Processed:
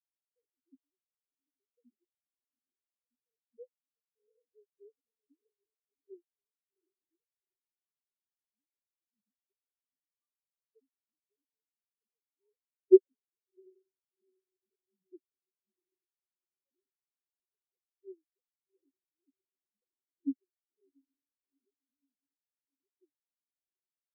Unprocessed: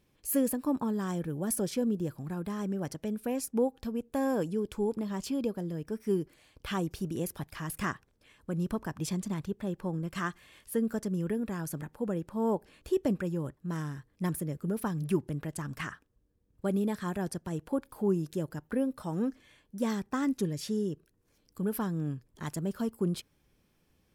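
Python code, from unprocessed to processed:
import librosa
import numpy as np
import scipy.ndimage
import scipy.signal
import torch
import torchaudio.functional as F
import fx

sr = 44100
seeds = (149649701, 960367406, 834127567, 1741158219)

y = fx.sine_speech(x, sr)
y = fx.echo_diffused(y, sr, ms=742, feedback_pct=69, wet_db=-6.0)
y = fx.spectral_expand(y, sr, expansion=4.0)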